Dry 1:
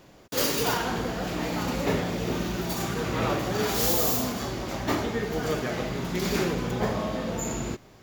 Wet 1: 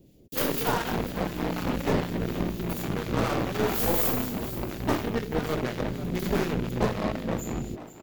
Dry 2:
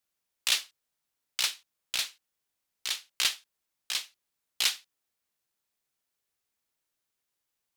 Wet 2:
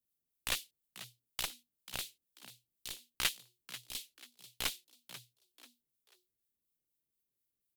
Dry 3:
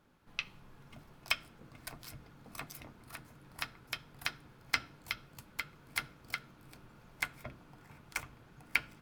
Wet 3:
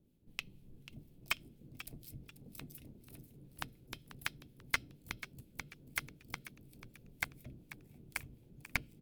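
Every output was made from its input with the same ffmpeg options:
ffmpeg -i in.wav -filter_complex "[0:a]equalizer=frequency=5500:width=0.76:gain=-12,aeval=exprs='0.316*(cos(1*acos(clip(val(0)/0.316,-1,1)))-cos(1*PI/2))+0.0501*(cos(5*acos(clip(val(0)/0.316,-1,1)))-cos(5*PI/2))+0.0355*(cos(6*acos(clip(val(0)/0.316,-1,1)))-cos(6*PI/2))+0.02*(cos(7*acos(clip(val(0)/0.316,-1,1)))-cos(7*PI/2))':channel_layout=same,acrossover=split=1400[link_01][link_02];[link_01]aeval=exprs='val(0)*(1-0.5/2+0.5/2*cos(2*PI*4.1*n/s))':channel_layout=same[link_03];[link_02]aeval=exprs='val(0)*(1-0.5/2-0.5/2*cos(2*PI*4.1*n/s))':channel_layout=same[link_04];[link_03][link_04]amix=inputs=2:normalize=0,acrossover=split=460|3200[link_05][link_06][link_07];[link_06]acrusher=bits=4:mix=0:aa=0.5[link_08];[link_05][link_08][link_07]amix=inputs=3:normalize=0,asplit=4[link_09][link_10][link_11][link_12];[link_10]adelay=489,afreqshift=120,volume=-14dB[link_13];[link_11]adelay=978,afreqshift=240,volume=-23.4dB[link_14];[link_12]adelay=1467,afreqshift=360,volume=-32.7dB[link_15];[link_09][link_13][link_14][link_15]amix=inputs=4:normalize=0" out.wav

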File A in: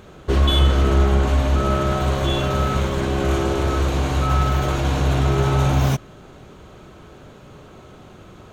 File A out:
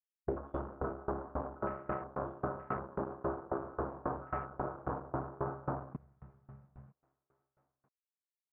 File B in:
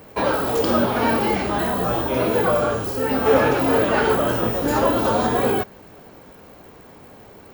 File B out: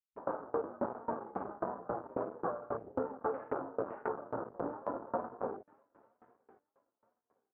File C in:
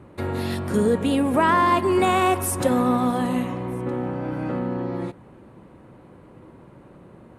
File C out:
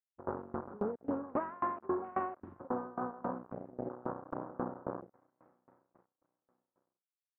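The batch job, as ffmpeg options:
ffmpeg -i in.wav -af "alimiter=limit=-15dB:level=0:latency=1:release=276,acrusher=bits=3:mix=0:aa=0.5,aecho=1:1:962|1924:0.1|0.021,afwtdn=0.0447,highpass=frequency=430:poles=1,acompressor=threshold=-39dB:ratio=2.5,lowpass=frequency=1400:width=0.5412,lowpass=frequency=1400:width=1.3066,aeval=exprs='val(0)*pow(10,-25*if(lt(mod(3.7*n/s,1),2*abs(3.7)/1000),1-mod(3.7*n/s,1)/(2*abs(3.7)/1000),(mod(3.7*n/s,1)-2*abs(3.7)/1000)/(1-2*abs(3.7)/1000))/20)':channel_layout=same,volume=7dB" out.wav

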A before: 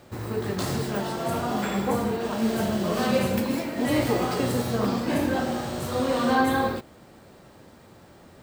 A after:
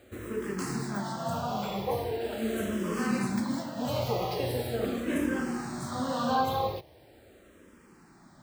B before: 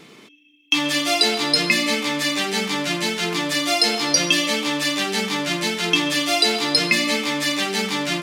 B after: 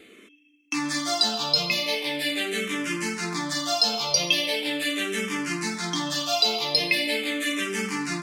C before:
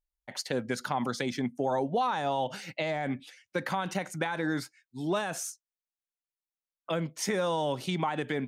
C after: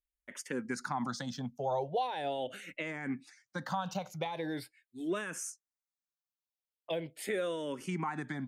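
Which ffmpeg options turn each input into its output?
ffmpeg -i in.wav -filter_complex "[0:a]asplit=2[link_01][link_02];[link_02]afreqshift=-0.41[link_03];[link_01][link_03]amix=inputs=2:normalize=1,volume=-2.5dB" out.wav

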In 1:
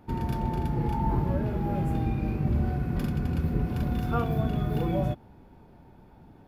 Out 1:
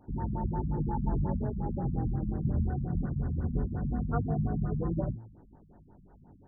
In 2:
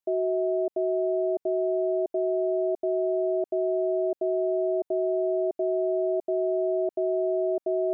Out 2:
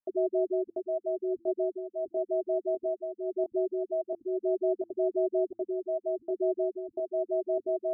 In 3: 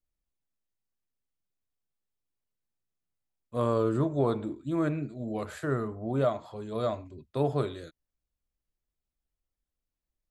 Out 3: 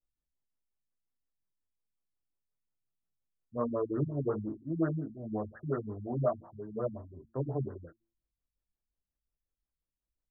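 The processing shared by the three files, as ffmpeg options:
ffmpeg -i in.wav -af "flanger=delay=18.5:depth=4.9:speed=0.2,bandreject=frequency=112.7:width_type=h:width=4,bandreject=frequency=225.4:width_type=h:width=4,bandreject=frequency=338.1:width_type=h:width=4,afftfilt=real='re*lt(b*sr/1024,230*pow(2000/230,0.5+0.5*sin(2*PI*5.6*pts/sr)))':imag='im*lt(b*sr/1024,230*pow(2000/230,0.5+0.5*sin(2*PI*5.6*pts/sr)))':win_size=1024:overlap=0.75" out.wav

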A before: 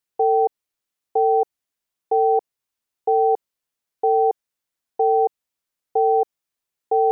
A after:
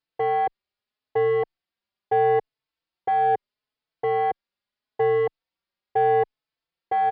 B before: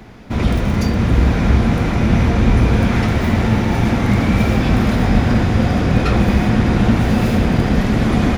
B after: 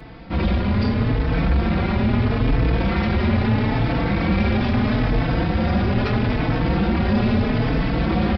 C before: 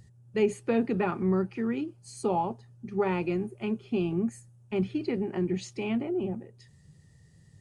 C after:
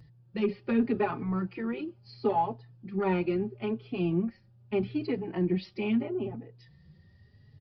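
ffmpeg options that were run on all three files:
ffmpeg -i in.wav -filter_complex "[0:a]aresample=11025,asoftclip=type=tanh:threshold=-15.5dB,aresample=44100,asplit=2[link_01][link_02];[link_02]adelay=4.1,afreqshift=0.77[link_03];[link_01][link_03]amix=inputs=2:normalize=1,volume=3dB" out.wav

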